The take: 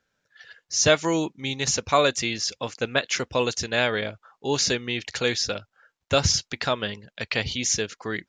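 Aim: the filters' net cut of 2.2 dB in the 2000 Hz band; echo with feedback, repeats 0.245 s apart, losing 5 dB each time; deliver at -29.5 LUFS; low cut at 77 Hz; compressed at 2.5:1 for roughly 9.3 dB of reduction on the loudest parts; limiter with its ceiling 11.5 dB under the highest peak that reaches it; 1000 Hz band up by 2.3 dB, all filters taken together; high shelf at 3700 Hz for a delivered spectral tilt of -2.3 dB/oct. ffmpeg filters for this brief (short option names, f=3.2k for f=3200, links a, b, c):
-af "highpass=77,equalizer=f=1k:t=o:g=4,equalizer=f=2k:t=o:g=-6.5,highshelf=f=3.7k:g=7.5,acompressor=threshold=-27dB:ratio=2.5,alimiter=limit=-22.5dB:level=0:latency=1,aecho=1:1:245|490|735|980|1225|1470|1715:0.562|0.315|0.176|0.0988|0.0553|0.031|0.0173,volume=3dB"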